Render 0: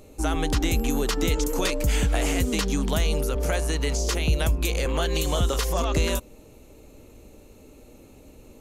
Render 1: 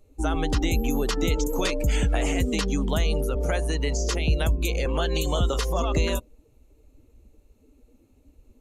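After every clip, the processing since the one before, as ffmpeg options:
-af "afftdn=nr=16:nf=-35"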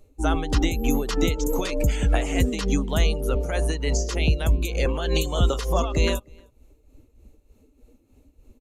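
-filter_complex "[0:a]tremolo=f=3.3:d=0.62,asplit=2[a][b];[b]adelay=309,volume=-29dB,highshelf=f=4k:g=-6.95[c];[a][c]amix=inputs=2:normalize=0,volume=4dB"

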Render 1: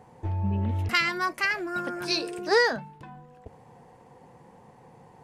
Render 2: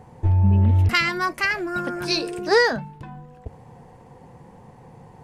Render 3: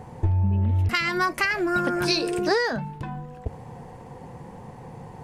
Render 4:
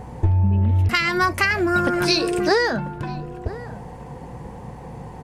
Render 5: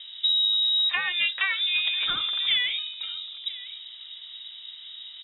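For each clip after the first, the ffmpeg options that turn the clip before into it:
-af "lowshelf=f=140:g=11.5,volume=3.5dB"
-af "acompressor=threshold=-24dB:ratio=10,volume=5dB"
-filter_complex "[0:a]aeval=exprs='val(0)+0.00562*(sin(2*PI*60*n/s)+sin(2*PI*2*60*n/s)/2+sin(2*PI*3*60*n/s)/3+sin(2*PI*4*60*n/s)/4+sin(2*PI*5*60*n/s)/5)':c=same,asplit=2[a][b];[b]adelay=991.3,volume=-16dB,highshelf=f=4k:g=-22.3[c];[a][c]amix=inputs=2:normalize=0,volume=4dB"
-af "lowpass=f=3.3k:t=q:w=0.5098,lowpass=f=3.3k:t=q:w=0.6013,lowpass=f=3.3k:t=q:w=0.9,lowpass=f=3.3k:t=q:w=2.563,afreqshift=-3900,volume=-6dB"

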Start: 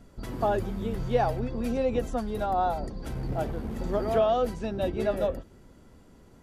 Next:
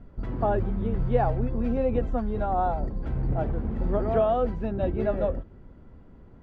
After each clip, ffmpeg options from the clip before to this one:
-af "lowpass=2k,lowshelf=f=150:g=8"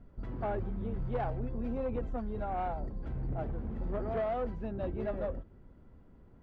-af "asoftclip=type=tanh:threshold=-19.5dB,volume=-7.5dB"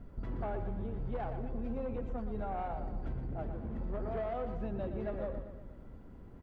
-filter_complex "[0:a]acompressor=threshold=-40dB:ratio=10,asplit=2[a][b];[b]aecho=0:1:119|238|357|476|595|714:0.355|0.185|0.0959|0.0499|0.0259|0.0135[c];[a][c]amix=inputs=2:normalize=0,volume=5dB"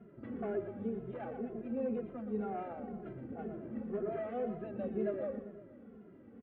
-filter_complex "[0:a]highpass=200,equalizer=f=220:t=q:w=4:g=8,equalizer=f=410:t=q:w=4:g=7,equalizer=f=940:t=q:w=4:g=-10,lowpass=f=2.9k:w=0.5412,lowpass=f=2.9k:w=1.3066,asplit=2[a][b];[b]adelay=2.4,afreqshift=-2[c];[a][c]amix=inputs=2:normalize=1,volume=2dB"

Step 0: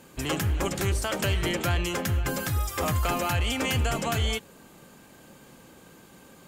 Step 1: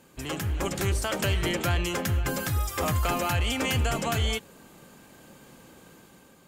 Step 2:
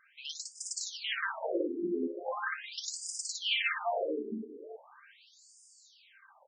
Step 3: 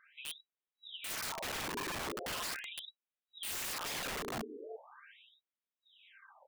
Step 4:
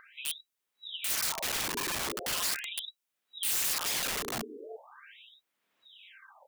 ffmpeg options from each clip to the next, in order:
-af "dynaudnorm=f=160:g=7:m=5dB,volume=-5dB"
-af "aecho=1:1:58|258|382:0.668|0.211|0.266,afftfilt=real='re*between(b*sr/1024,300*pow(6800/300,0.5+0.5*sin(2*PI*0.4*pts/sr))/1.41,300*pow(6800/300,0.5+0.5*sin(2*PI*0.4*pts/sr))*1.41)':imag='im*between(b*sr/1024,300*pow(6800/300,0.5+0.5*sin(2*PI*0.4*pts/sr))/1.41,300*pow(6800/300,0.5+0.5*sin(2*PI*0.4*pts/sr))*1.41)':win_size=1024:overlap=0.75,volume=1.5dB"
-af "afftfilt=real='re*between(b*sr/4096,170,3900)':imag='im*between(b*sr/4096,170,3900)':win_size=4096:overlap=0.75,aeval=exprs='(mod(53.1*val(0)+1,2)-1)/53.1':c=same"
-filter_complex "[0:a]highshelf=f=3.1k:g=9.5,acrossover=split=130|2800[a][b][c];[b]acompressor=mode=upward:threshold=-55dB:ratio=2.5[d];[a][d][c]amix=inputs=3:normalize=0,volume=2dB"

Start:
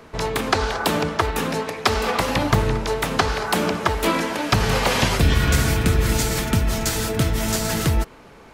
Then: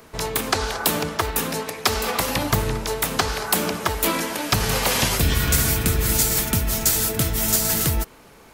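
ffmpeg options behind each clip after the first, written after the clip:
-af "aemphasis=mode=production:type=50fm,volume=-3dB"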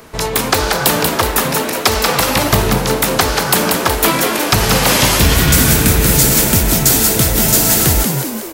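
-filter_complex "[0:a]asplit=8[a][b][c][d][e][f][g][h];[b]adelay=185,afreqshift=85,volume=-5dB[i];[c]adelay=370,afreqshift=170,volume=-10.5dB[j];[d]adelay=555,afreqshift=255,volume=-16dB[k];[e]adelay=740,afreqshift=340,volume=-21.5dB[l];[f]adelay=925,afreqshift=425,volume=-27.1dB[m];[g]adelay=1110,afreqshift=510,volume=-32.6dB[n];[h]adelay=1295,afreqshift=595,volume=-38.1dB[o];[a][i][j][k][l][m][n][o]amix=inputs=8:normalize=0,aeval=exprs='0.891*sin(PI/2*1.58*val(0)/0.891)':c=same"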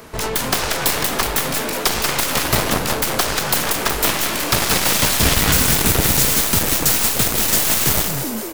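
-af "aeval=exprs='0.891*(cos(1*acos(clip(val(0)/0.891,-1,1)))-cos(1*PI/2))+0.398*(cos(7*acos(clip(val(0)/0.891,-1,1)))-cos(7*PI/2))+0.1*(cos(8*acos(clip(val(0)/0.891,-1,1)))-cos(8*PI/2))':c=same,volume=-7dB"

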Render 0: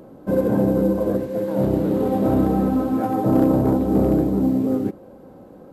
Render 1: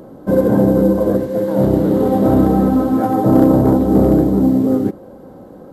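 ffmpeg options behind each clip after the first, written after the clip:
-af "equalizer=f=2.5k:t=o:w=0.28:g=-8,volume=6dB"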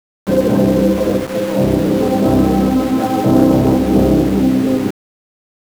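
-af "aeval=exprs='val(0)*gte(abs(val(0)),0.075)':c=same"

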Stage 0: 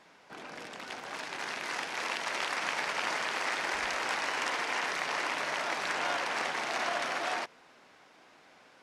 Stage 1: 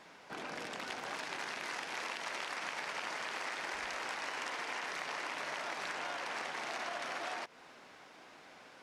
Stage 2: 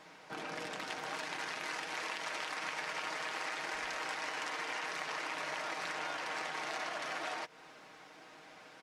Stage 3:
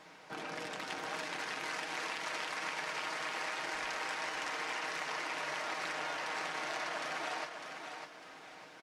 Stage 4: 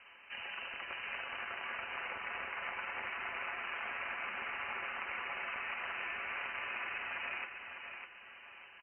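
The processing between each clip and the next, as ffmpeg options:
-af "acompressor=threshold=-40dB:ratio=6,volume=2.5dB"
-af "aecho=1:1:6.4:0.47"
-af "aecho=1:1:602|1204|1806|2408:0.447|0.147|0.0486|0.0161"
-af "lowpass=f=2.7k:t=q:w=0.5098,lowpass=f=2.7k:t=q:w=0.6013,lowpass=f=2.7k:t=q:w=0.9,lowpass=f=2.7k:t=q:w=2.563,afreqshift=-3200,volume=-1.5dB"

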